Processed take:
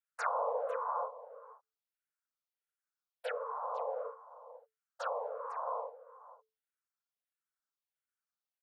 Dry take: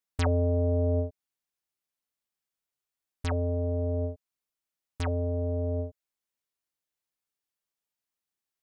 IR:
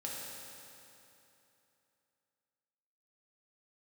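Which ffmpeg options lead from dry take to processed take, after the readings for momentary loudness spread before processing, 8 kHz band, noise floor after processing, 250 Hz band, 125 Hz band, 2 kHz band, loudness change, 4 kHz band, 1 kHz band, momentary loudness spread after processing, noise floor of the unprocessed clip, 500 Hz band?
11 LU, can't be measured, below −85 dBFS, below −40 dB, below −40 dB, −0.5 dB, −8.5 dB, −9.5 dB, +7.5 dB, 20 LU, below −85 dBFS, −6.5 dB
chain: -filter_complex "[0:a]equalizer=frequency=970:width=1.9:gain=14.5,aecho=1:1:501:0.168,afftfilt=real='hypot(re,im)*cos(2*PI*random(0))':imag='hypot(re,im)*sin(2*PI*random(1))':win_size=512:overlap=0.75,afreqshift=440,asplit=2[link_01][link_02];[link_02]afreqshift=-1.5[link_03];[link_01][link_03]amix=inputs=2:normalize=1,volume=-2dB"

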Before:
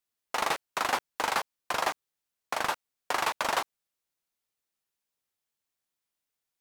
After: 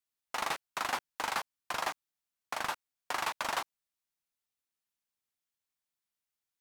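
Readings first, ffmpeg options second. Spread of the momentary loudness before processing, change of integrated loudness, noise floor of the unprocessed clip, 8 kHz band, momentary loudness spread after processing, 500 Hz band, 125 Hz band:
7 LU, −5.0 dB, below −85 dBFS, −4.5 dB, 7 LU, −8.0 dB, −5.0 dB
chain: -af "equalizer=frequency=460:width=1.4:gain=-5,volume=-4.5dB"

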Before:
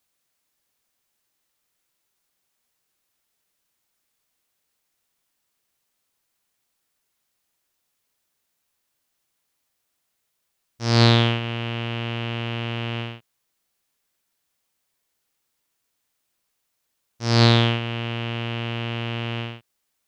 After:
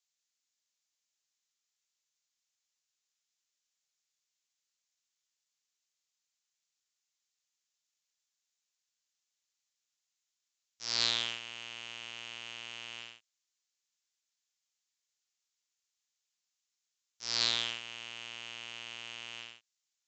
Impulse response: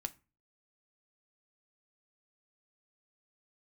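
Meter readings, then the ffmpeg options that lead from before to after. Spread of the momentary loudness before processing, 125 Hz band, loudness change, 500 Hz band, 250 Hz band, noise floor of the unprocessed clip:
14 LU, −37.5 dB, −13.0 dB, −25.0 dB, −30.5 dB, −76 dBFS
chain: -af "acrusher=bits=4:mode=log:mix=0:aa=0.000001,aderivative,aresample=16000,aresample=44100,volume=-2dB"

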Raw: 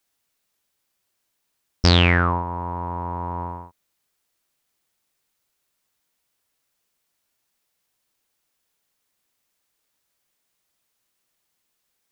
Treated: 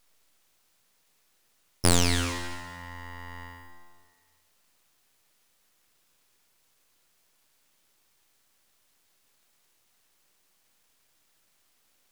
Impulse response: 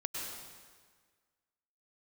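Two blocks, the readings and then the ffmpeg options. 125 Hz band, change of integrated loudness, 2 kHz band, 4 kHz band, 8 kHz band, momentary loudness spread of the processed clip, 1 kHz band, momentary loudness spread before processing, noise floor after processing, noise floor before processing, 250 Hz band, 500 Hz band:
−10.0 dB, −7.5 dB, −10.0 dB, −7.0 dB, can't be measured, 21 LU, −11.5 dB, 16 LU, −69 dBFS, −76 dBFS, −7.0 dB, −7.0 dB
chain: -filter_complex "[0:a]crystalizer=i=9.5:c=0,aeval=exprs='abs(val(0))':channel_layout=same,asplit=2[link_01][link_02];[1:a]atrim=start_sample=2205,adelay=73[link_03];[link_02][link_03]afir=irnorm=-1:irlink=0,volume=-9dB[link_04];[link_01][link_04]amix=inputs=2:normalize=0,volume=-14dB"

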